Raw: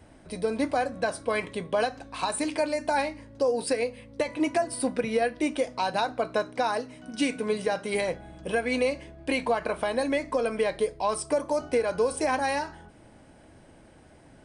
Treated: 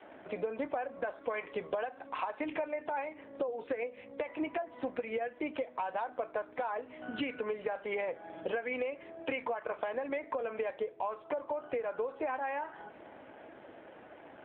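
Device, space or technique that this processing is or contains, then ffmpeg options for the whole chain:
voicemail: -af "highpass=410,lowpass=2700,acompressor=threshold=-40dB:ratio=8,volume=8dB" -ar 8000 -c:a libopencore_amrnb -b:a 7400

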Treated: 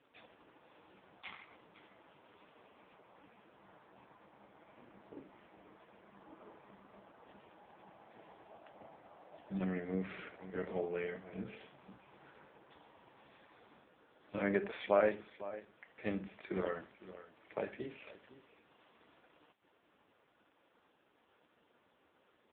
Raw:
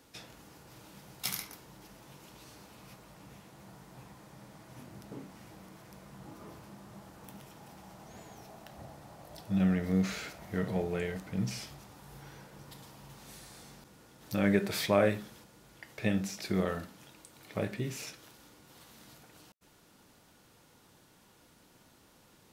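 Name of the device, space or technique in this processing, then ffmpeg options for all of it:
satellite phone: -af "highpass=310,lowpass=3200,aecho=1:1:504:0.168,volume=-1.5dB" -ar 8000 -c:a libopencore_amrnb -b:a 4750

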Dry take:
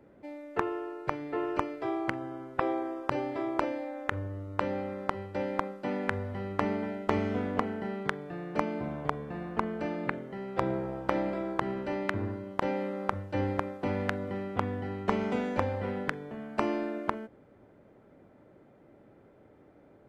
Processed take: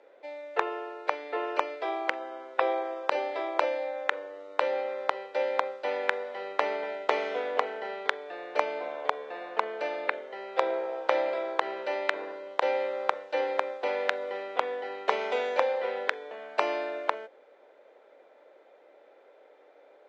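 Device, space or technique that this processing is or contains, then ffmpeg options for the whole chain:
phone speaker on a table: -af "highpass=frequency=490:width=0.5412,highpass=frequency=490:width=1.3066,equalizer=frequency=500:width_type=q:width=4:gain=5,equalizer=frequency=1200:width_type=q:width=4:gain=-3,equalizer=frequency=2400:width_type=q:width=4:gain=3,equalizer=frequency=3700:width_type=q:width=4:gain=7,lowpass=frequency=7000:width=0.5412,lowpass=frequency=7000:width=1.3066,volume=4.5dB"

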